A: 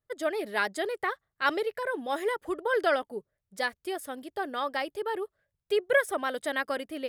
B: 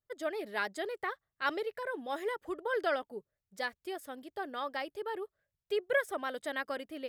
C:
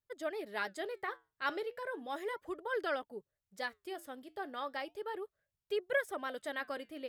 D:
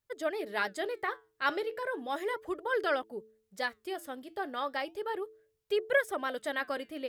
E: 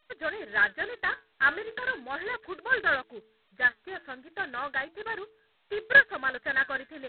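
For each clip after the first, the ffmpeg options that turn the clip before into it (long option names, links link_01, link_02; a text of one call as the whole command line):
ffmpeg -i in.wav -af "equalizer=frequency=9900:width_type=o:width=0.28:gain=-7,volume=-6dB" out.wav
ffmpeg -i in.wav -af "flanger=delay=0.7:depth=7.3:regen=-82:speed=0.35:shape=sinusoidal,volume=1.5dB" out.wav
ffmpeg -i in.wav -af "bandreject=frequency=109.7:width_type=h:width=4,bandreject=frequency=219.4:width_type=h:width=4,bandreject=frequency=329.1:width_type=h:width=4,bandreject=frequency=438.8:width_type=h:width=4,volume=5.5dB" out.wav
ffmpeg -i in.wav -af "lowpass=frequency=1700:width_type=q:width=7.8,volume=-4.5dB" -ar 8000 -c:a adpcm_g726 -b:a 16k out.wav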